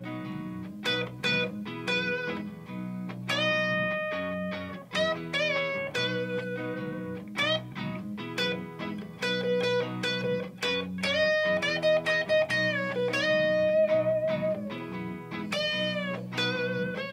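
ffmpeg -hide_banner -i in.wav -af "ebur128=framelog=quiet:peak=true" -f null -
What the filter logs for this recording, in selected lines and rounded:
Integrated loudness:
  I:         -28.8 LUFS
  Threshold: -38.8 LUFS
Loudness range:
  LRA:         5.5 LU
  Threshold: -48.6 LUFS
  LRA low:   -31.2 LUFS
  LRA high:  -25.8 LUFS
True peak:
  Peak:      -14.1 dBFS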